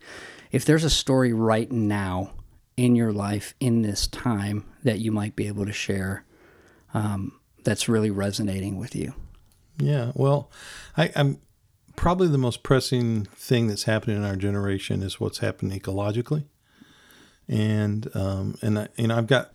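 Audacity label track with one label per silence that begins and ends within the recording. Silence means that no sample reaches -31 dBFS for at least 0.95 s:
16.420000	17.490000	silence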